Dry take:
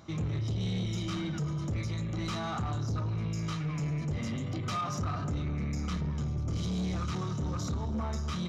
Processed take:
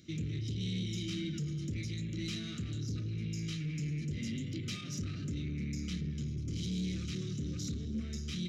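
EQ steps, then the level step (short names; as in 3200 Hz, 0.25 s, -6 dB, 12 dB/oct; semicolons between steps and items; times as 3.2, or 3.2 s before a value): Chebyshev band-stop 310–2500 Hz, order 2; low shelf 130 Hz -8 dB; 0.0 dB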